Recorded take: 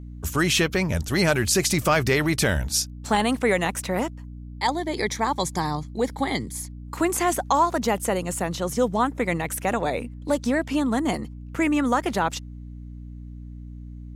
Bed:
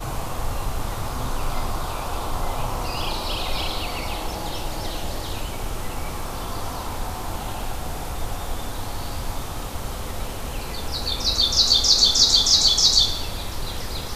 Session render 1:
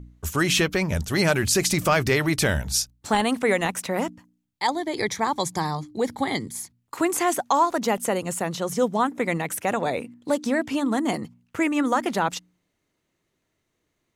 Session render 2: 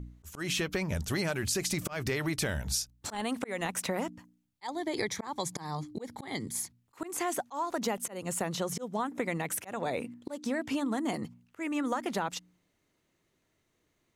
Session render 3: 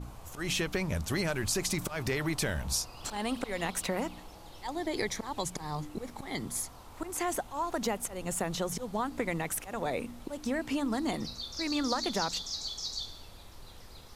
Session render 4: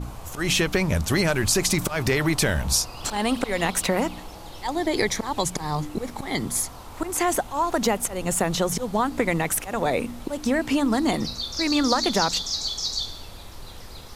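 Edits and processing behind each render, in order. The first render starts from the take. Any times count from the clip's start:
de-hum 60 Hz, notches 5
slow attack 378 ms; compression 5:1, threshold -29 dBFS, peak gain reduction 12.5 dB
add bed -21 dB
trim +9.5 dB

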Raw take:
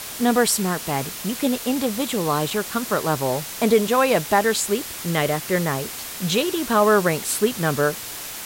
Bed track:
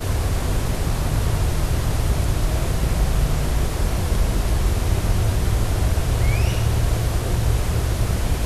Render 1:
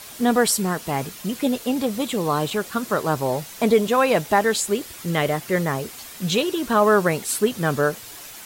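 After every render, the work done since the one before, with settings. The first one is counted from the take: noise reduction 8 dB, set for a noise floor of -34 dBFS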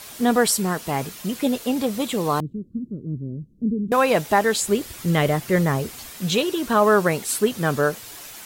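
2.40–3.92 s: inverse Chebyshev low-pass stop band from 740 Hz, stop band 50 dB; 4.61–6.11 s: bass shelf 190 Hz +8.5 dB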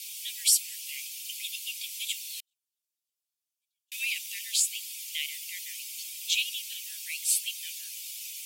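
steep high-pass 2.3 kHz 72 dB/octave; band-stop 4 kHz, Q 19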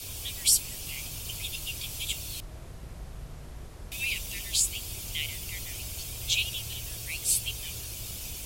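add bed track -22.5 dB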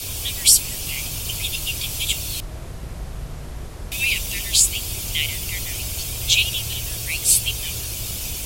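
trim +10 dB; peak limiter -1 dBFS, peak gain reduction 2 dB

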